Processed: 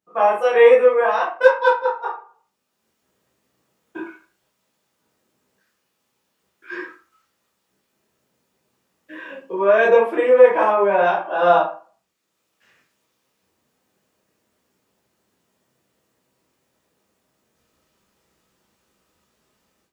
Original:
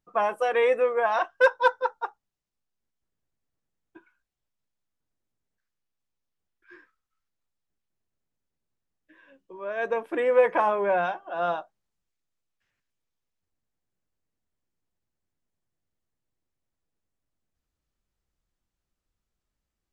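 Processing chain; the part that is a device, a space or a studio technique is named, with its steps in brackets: far laptop microphone (reverb RT60 0.40 s, pre-delay 13 ms, DRR -6 dB; HPF 170 Hz 12 dB/oct; AGC gain up to 16 dB); gain -1 dB

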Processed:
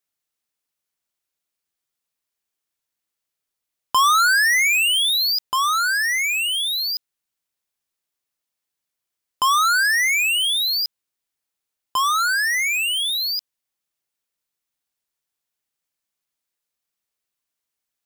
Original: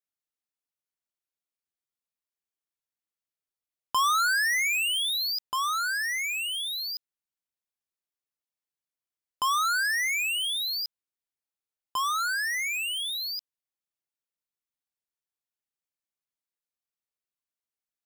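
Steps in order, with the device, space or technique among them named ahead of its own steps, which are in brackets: exciter from parts (in parallel at -8.5 dB: HPF 2200 Hz 6 dB/oct + soft clip -34 dBFS, distortion -8 dB); on the sum: gain +7.5 dB

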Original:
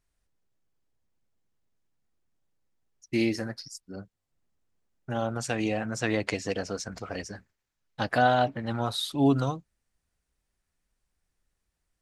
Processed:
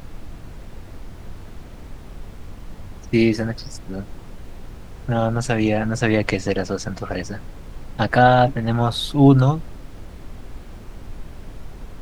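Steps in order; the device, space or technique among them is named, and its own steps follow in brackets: car interior (bell 140 Hz +6 dB; high shelf 4400 Hz -7 dB; brown noise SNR 11 dB); gain +8.5 dB

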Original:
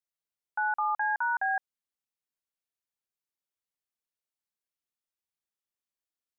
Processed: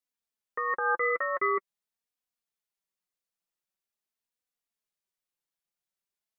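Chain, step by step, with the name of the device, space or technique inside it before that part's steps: alien voice (ring modulator 370 Hz; flange 0.45 Hz, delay 3.9 ms, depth 2.2 ms, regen +25%); gain +7.5 dB

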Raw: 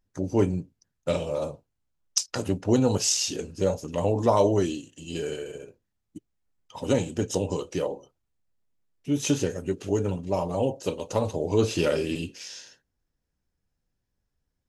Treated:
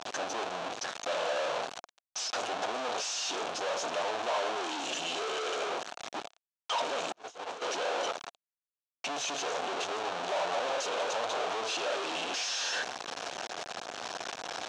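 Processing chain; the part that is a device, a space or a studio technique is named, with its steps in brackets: home computer beeper (infinite clipping; speaker cabinet 660–5800 Hz, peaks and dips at 700 Hz +7 dB, 2000 Hz -7 dB, 4900 Hz -6 dB); 7.12–7.62 gate -31 dBFS, range -40 dB

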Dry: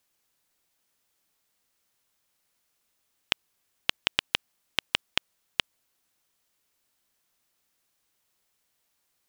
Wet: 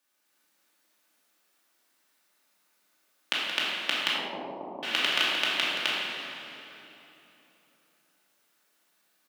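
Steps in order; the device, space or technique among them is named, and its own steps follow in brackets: stadium PA (HPF 210 Hz 24 dB/oct; bell 1500 Hz +4.5 dB 0.67 oct; loudspeakers at several distances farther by 60 m -9 dB, 89 m 0 dB; reverb RT60 3.3 s, pre-delay 20 ms, DRR 2 dB); 4.13–4.83 steep low-pass 1000 Hz 72 dB/oct; shoebox room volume 620 m³, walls mixed, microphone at 2.5 m; gain -5.5 dB

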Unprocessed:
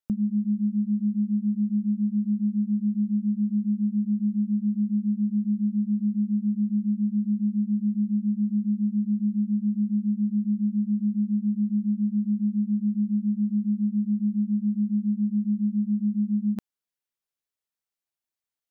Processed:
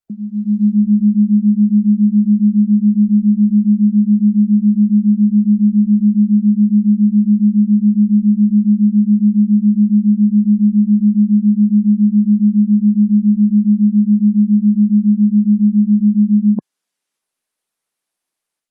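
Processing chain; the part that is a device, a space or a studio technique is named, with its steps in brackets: noise-suppressed video call (HPF 160 Hz 24 dB/oct; spectral gate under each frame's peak -30 dB strong; AGC gain up to 16 dB; gain -1.5 dB; Opus 32 kbps 48000 Hz)

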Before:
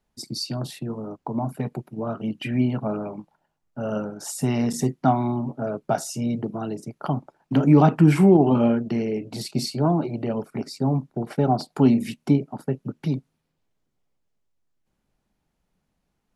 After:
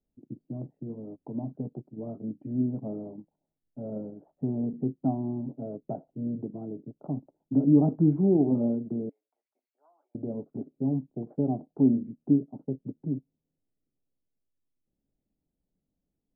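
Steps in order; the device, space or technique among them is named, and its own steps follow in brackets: 9.09–10.15 HPF 1400 Hz 24 dB/oct; under water (LPF 620 Hz 24 dB/oct; bell 280 Hz +7 dB 0.31 oct); gain -8.5 dB

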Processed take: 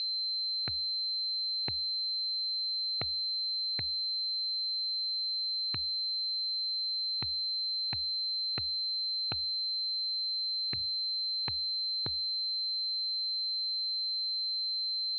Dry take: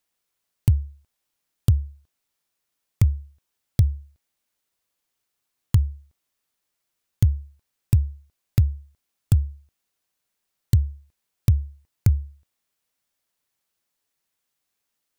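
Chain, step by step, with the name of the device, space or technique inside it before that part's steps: 9.41–10.88 notches 50/100/150 Hz; toy sound module (decimation joined by straight lines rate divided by 6×; pulse-width modulation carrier 4100 Hz; speaker cabinet 560–4000 Hz, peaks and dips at 560 Hz -7 dB, 1100 Hz -8 dB, 1600 Hz -4 dB, 2600 Hz +7 dB)

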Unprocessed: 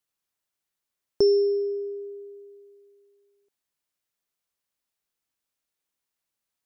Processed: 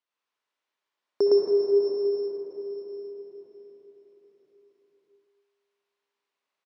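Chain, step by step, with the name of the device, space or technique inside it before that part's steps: station announcement (BPF 340–3700 Hz; bell 1000 Hz +6 dB 0.24 oct; loudspeakers at several distances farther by 38 m 0 dB, 93 m -10 dB; reverb RT60 4.5 s, pre-delay 58 ms, DRR -1.5 dB); gain -1 dB

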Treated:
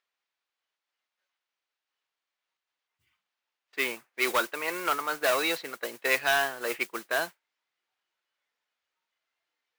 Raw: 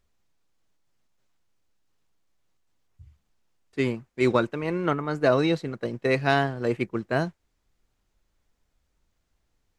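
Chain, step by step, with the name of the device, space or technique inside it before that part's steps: spectral noise reduction 8 dB; carbon microphone (BPF 390–3500 Hz; soft clip -20 dBFS, distortion -11 dB; modulation noise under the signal 20 dB); tilt shelf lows -9.5 dB, about 720 Hz

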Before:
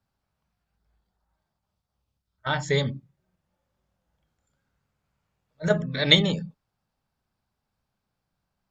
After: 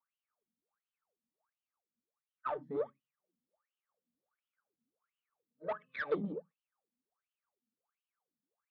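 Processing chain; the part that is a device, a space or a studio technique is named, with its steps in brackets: wah-wah guitar rig (wah 1.4 Hz 230–3000 Hz, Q 18; tube stage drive 36 dB, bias 0.3; speaker cabinet 76–4300 Hz, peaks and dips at 220 Hz +4 dB, 470 Hz +8 dB, 1200 Hz +9 dB); gain +4 dB

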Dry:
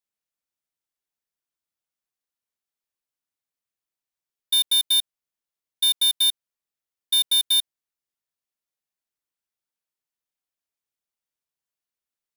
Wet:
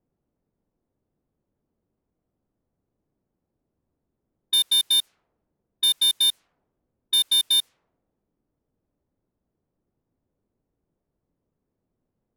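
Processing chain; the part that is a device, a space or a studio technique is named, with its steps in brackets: cassette deck with a dynamic noise filter (white noise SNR 32 dB; low-pass opened by the level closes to 320 Hz, open at -21 dBFS)

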